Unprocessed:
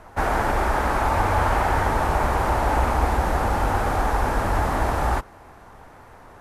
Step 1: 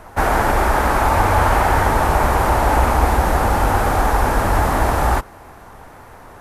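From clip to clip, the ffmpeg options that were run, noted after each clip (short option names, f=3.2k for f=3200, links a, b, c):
-af "highshelf=f=12k:g=11.5,volume=5.5dB"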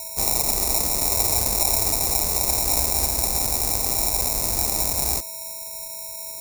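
-af "aeval=exprs='val(0)+0.0398*sin(2*PI*650*n/s)':c=same,acrusher=samples=28:mix=1:aa=0.000001,aexciter=amount=10.2:drive=5.8:freq=4.7k,volume=-14dB"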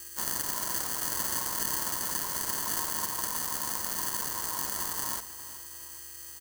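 -af "acrusher=bits=5:mix=0:aa=0.5,aeval=exprs='val(0)*sin(2*PI*1000*n/s)':c=same,aecho=1:1:413|826|1239|1652:0.178|0.0836|0.0393|0.0185,volume=-7.5dB"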